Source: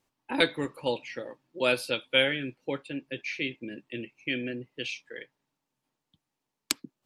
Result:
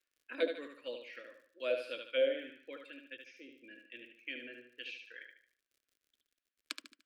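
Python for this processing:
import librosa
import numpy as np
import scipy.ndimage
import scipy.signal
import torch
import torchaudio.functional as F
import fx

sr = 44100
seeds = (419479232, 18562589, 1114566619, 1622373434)

y = fx.peak_eq(x, sr, hz=400.0, db=-3.0, octaves=2.2)
y = fx.spec_box(y, sr, start_s=3.17, length_s=0.47, low_hz=650.0, high_hz=4800.0, gain_db=-17)
y = fx.graphic_eq_31(y, sr, hz=(160, 400, 800, 1250, 2000, 6300), db=(-10, -8, -9, -7, -5, -4))
y = fx.echo_feedback(y, sr, ms=74, feedback_pct=38, wet_db=-6)
y = fx.auto_wah(y, sr, base_hz=560.0, top_hz=1500.0, q=2.2, full_db=-21.5, direction='down')
y = fx.dmg_crackle(y, sr, seeds[0], per_s=70.0, level_db=-64.0)
y = fx.fixed_phaser(y, sr, hz=370.0, stages=4)
y = y * librosa.db_to_amplitude(5.0)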